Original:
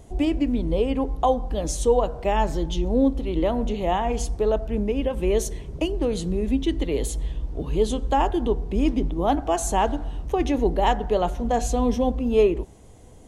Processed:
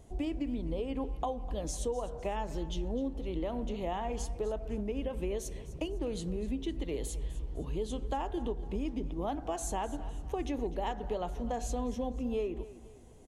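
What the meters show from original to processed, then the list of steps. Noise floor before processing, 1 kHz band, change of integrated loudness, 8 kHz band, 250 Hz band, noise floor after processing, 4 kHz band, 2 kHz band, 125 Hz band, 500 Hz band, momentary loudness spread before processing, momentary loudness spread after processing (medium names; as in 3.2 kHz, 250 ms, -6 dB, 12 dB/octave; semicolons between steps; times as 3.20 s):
-45 dBFS, -13.5 dB, -12.5 dB, -10.0 dB, -12.0 dB, -48 dBFS, -12.0 dB, -13.0 dB, -11.0 dB, -13.0 dB, 6 LU, 4 LU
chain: compression, threshold -22 dBFS, peak gain reduction 9 dB; on a send: feedback delay 253 ms, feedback 41%, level -16.5 dB; on the sum: trim -8.5 dB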